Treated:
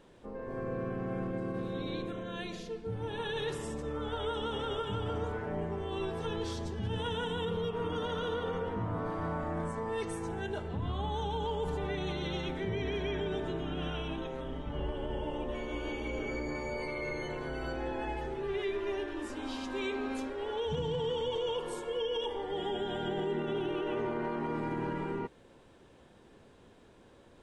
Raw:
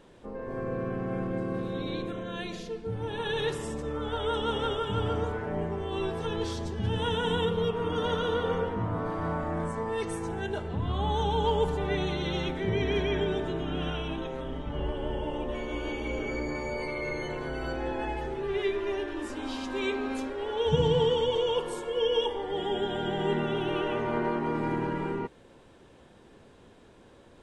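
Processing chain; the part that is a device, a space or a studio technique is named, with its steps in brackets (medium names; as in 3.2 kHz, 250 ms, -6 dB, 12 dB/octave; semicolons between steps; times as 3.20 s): 23.09–24.19 s: peaking EQ 360 Hz +6 dB 0.77 oct; clipper into limiter (hard clipper -15 dBFS, distortion -36 dB; peak limiter -22.5 dBFS, peak gain reduction 7.5 dB); trim -3.5 dB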